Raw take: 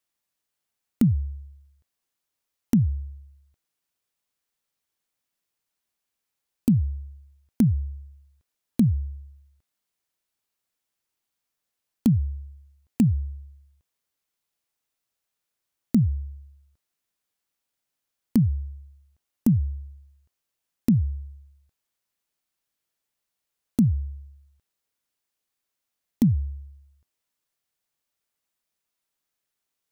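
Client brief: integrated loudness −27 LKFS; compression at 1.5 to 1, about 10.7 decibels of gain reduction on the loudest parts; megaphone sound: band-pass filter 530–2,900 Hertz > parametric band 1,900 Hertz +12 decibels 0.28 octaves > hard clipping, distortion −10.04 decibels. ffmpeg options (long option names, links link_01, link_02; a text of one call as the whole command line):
ffmpeg -i in.wav -af "acompressor=threshold=-46dB:ratio=1.5,highpass=530,lowpass=2900,equalizer=frequency=1900:width_type=o:width=0.28:gain=12,asoftclip=type=hard:threshold=-37.5dB,volume=25.5dB" out.wav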